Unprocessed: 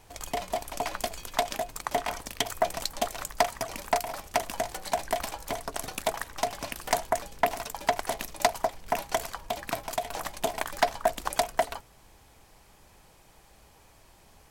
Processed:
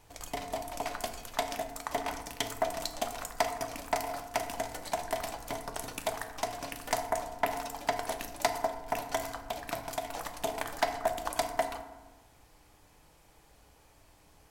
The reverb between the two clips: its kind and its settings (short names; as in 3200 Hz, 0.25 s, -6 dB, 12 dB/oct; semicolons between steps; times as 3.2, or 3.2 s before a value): FDN reverb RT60 1.2 s, low-frequency decay 1.35×, high-frequency decay 0.45×, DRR 5.5 dB; gain -5 dB